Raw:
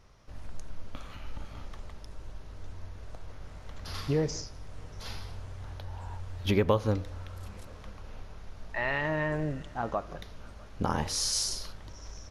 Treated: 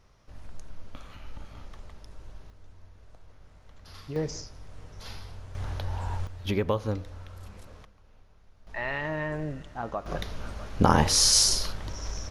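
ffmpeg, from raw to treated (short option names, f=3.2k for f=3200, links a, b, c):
-af "asetnsamples=n=441:p=0,asendcmd='2.5 volume volume -9dB;4.16 volume volume -1.5dB;5.55 volume volume 8dB;6.27 volume volume -2dB;7.85 volume volume -13.5dB;8.67 volume volume -1.5dB;10.06 volume volume 9.5dB',volume=-2dB"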